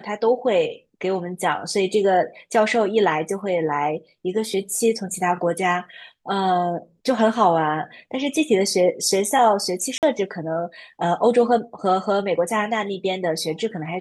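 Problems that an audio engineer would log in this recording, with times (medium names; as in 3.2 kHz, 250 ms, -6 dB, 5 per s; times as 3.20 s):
9.98–10.03 s: dropout 48 ms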